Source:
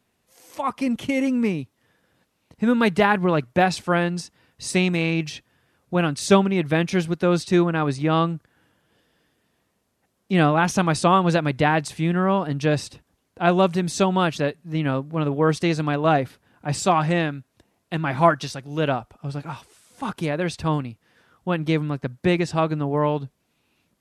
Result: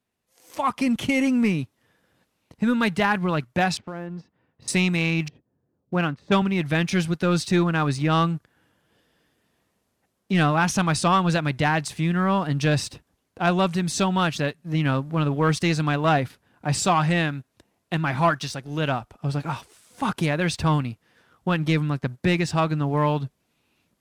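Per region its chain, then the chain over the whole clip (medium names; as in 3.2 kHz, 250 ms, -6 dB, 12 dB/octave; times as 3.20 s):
3.77–4.68 s: high-pass 90 Hz + tape spacing loss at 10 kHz 44 dB + compression 4:1, threshold -33 dBFS
5.28–6.42 s: high-pass 130 Hz 6 dB/octave + level-controlled noise filter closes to 380 Hz, open at -11.5 dBFS
whole clip: dynamic bell 440 Hz, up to -7 dB, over -32 dBFS, Q 0.82; level rider gain up to 10.5 dB; waveshaping leveller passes 1; trim -9 dB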